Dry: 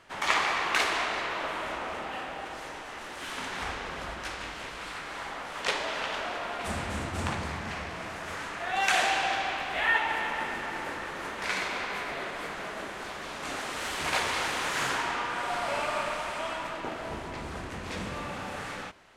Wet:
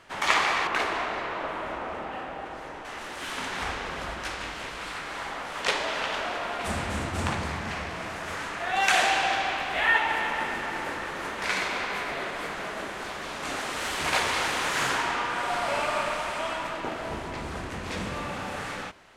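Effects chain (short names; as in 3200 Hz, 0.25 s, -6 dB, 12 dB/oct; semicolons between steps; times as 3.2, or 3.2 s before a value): 0.67–2.85 high shelf 2400 Hz -12 dB; gain +3 dB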